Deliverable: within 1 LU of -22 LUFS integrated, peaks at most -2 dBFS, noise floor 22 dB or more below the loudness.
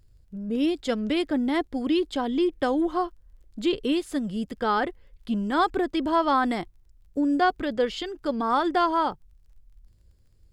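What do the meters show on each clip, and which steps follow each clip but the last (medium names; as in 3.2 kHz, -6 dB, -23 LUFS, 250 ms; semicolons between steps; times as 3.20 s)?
tick rate 18 per s; loudness -26.0 LUFS; peak level -11.5 dBFS; loudness target -22.0 LUFS
-> de-click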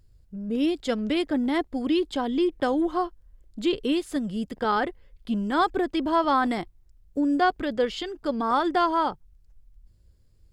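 tick rate 0.19 per s; loudness -26.0 LUFS; peak level -11.5 dBFS; loudness target -22.0 LUFS
-> trim +4 dB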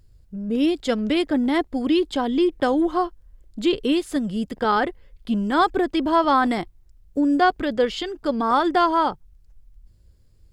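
loudness -22.0 LUFS; peak level -7.5 dBFS; noise floor -55 dBFS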